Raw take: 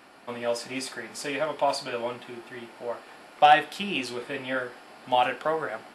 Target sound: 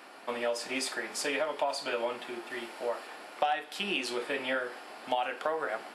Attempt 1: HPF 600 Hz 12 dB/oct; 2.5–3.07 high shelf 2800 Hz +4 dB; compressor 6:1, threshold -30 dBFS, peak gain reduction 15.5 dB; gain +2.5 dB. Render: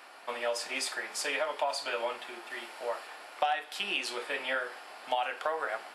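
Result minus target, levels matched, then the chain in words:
250 Hz band -8.0 dB
HPF 300 Hz 12 dB/oct; 2.5–3.07 high shelf 2800 Hz +4 dB; compressor 6:1, threshold -30 dBFS, peak gain reduction 16.5 dB; gain +2.5 dB

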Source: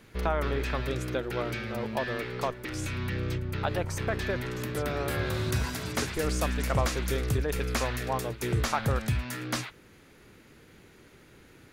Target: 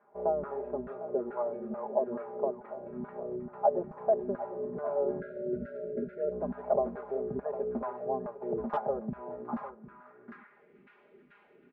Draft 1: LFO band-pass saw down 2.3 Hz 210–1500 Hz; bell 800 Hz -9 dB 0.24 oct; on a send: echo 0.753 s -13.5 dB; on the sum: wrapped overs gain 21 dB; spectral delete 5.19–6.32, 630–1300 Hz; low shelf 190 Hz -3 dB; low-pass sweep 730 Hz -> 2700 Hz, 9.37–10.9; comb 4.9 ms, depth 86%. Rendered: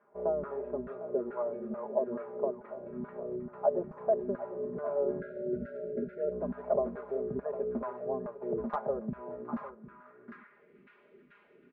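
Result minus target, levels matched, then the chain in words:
1000 Hz band -3.5 dB
LFO band-pass saw down 2.3 Hz 210–1500 Hz; on a send: echo 0.753 s -13.5 dB; on the sum: wrapped overs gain 21 dB; spectral delete 5.19–6.32, 630–1300 Hz; low shelf 190 Hz -3 dB; low-pass sweep 730 Hz -> 2700 Hz, 9.37–10.9; comb 4.9 ms, depth 86%

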